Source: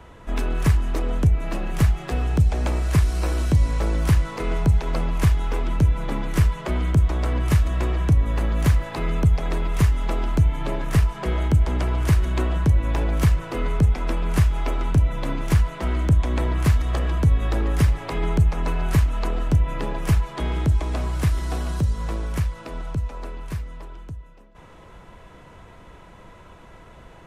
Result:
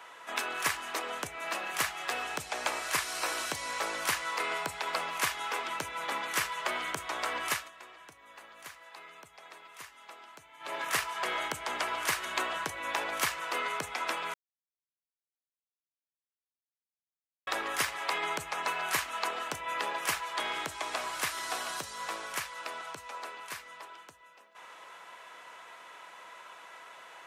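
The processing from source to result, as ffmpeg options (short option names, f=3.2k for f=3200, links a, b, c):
-filter_complex "[0:a]asettb=1/sr,asplit=3[a][b][c];[a]atrim=end=4.384[d];[b]atrim=start=4.38:end=4.98,asetpts=PTS-STARTPTS,afade=t=in:d=0.004:c=qsin,afade=t=out:st=0.596:d=0.004:c=qsin,bandreject=f=6.2k:w=12[e];[c]atrim=start=4.976[f];[d][e]acrossfade=d=0.004:c1=hsin:c2=qsin[g];[g][f]acrossfade=d=0.004:c1=qsin:c2=hsin,asplit=5[h][i][j][k][l];[h]atrim=end=7.71,asetpts=PTS-STARTPTS,afade=t=out:st=7.48:d=0.23:silence=0.141254[m];[i]atrim=start=7.71:end=10.59,asetpts=PTS-STARTPTS,volume=-17dB[n];[j]atrim=start=10.59:end=14.34,asetpts=PTS-STARTPTS,afade=t=in:d=0.23:silence=0.141254,afade=t=out:st=3.746:d=0.004:c=hsin[o];[k]atrim=start=14.34:end=17.47,asetpts=PTS-STARTPTS,volume=0[p];[l]atrim=start=17.47,asetpts=PTS-STARTPTS,afade=t=in:d=0.004:c=hsin[q];[m][n][o][p][q]concat=n=5:v=0:a=1,highpass=1k,volume=3.5dB"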